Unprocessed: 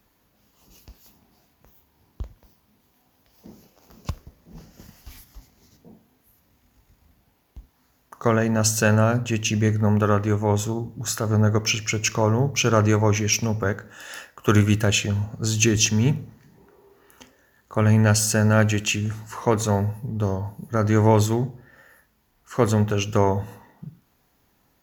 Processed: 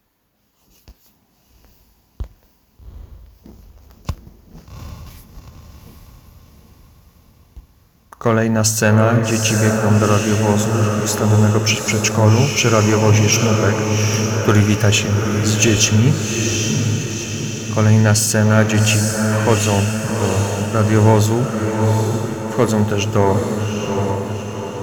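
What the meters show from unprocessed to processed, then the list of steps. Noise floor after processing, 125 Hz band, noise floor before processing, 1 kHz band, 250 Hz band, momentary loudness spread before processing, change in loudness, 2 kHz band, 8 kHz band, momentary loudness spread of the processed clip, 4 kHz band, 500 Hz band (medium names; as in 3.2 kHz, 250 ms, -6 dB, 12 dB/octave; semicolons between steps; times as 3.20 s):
-57 dBFS, +6.5 dB, -65 dBFS, +6.0 dB, +6.5 dB, 14 LU, +5.5 dB, +6.5 dB, +7.0 dB, 10 LU, +7.0 dB, +6.5 dB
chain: waveshaping leveller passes 1; echo that smears into a reverb 798 ms, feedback 55%, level -4 dB; trim +1.5 dB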